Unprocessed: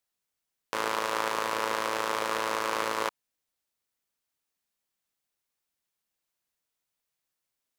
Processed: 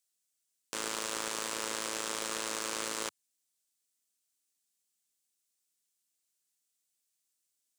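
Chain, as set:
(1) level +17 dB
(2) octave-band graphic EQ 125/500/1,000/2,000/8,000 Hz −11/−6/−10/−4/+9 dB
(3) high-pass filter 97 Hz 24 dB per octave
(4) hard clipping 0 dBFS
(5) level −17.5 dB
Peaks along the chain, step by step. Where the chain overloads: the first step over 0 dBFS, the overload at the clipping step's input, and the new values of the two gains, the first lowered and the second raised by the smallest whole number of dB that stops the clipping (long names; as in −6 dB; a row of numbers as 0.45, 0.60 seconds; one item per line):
+6.0, +7.5, +7.0, 0.0, −17.5 dBFS
step 1, 7.0 dB
step 1 +10 dB, step 5 −10.5 dB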